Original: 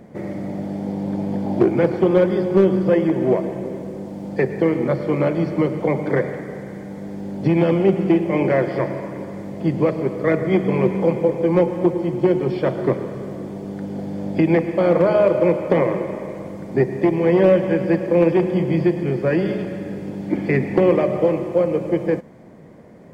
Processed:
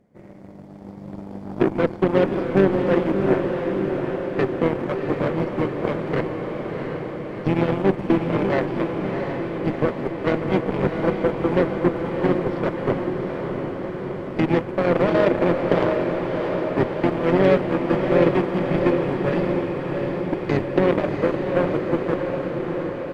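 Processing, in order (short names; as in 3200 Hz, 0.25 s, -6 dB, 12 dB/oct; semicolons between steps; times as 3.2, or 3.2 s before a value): added harmonics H 2 -28 dB, 3 -37 dB, 6 -30 dB, 7 -19 dB, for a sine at -3.5 dBFS; outdoor echo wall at 130 m, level -13 dB; harmoniser -5 st -8 dB; on a send: diffused feedback echo 0.696 s, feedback 70%, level -5 dB; on the sum: gain -3.5 dB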